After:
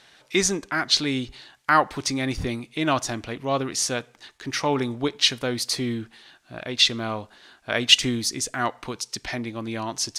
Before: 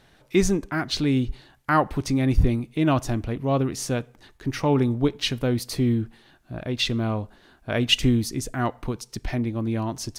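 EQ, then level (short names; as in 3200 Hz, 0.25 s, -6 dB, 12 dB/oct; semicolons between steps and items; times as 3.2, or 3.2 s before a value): dynamic EQ 2700 Hz, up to -4 dB, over -47 dBFS, Q 3.4; air absorption 76 m; tilt +4 dB/oct; +3.0 dB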